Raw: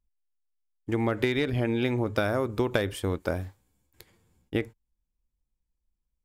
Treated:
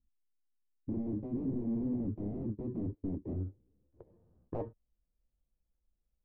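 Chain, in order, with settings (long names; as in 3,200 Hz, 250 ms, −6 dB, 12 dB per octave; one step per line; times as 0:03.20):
samples in bit-reversed order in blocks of 32 samples
0:00.93–0:03.14: noise gate −32 dBFS, range −22 dB
moving average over 6 samples
wave folding −31 dBFS
low-pass filter sweep 280 Hz → 630 Hz, 0:03.23–0:04.24
level −1 dB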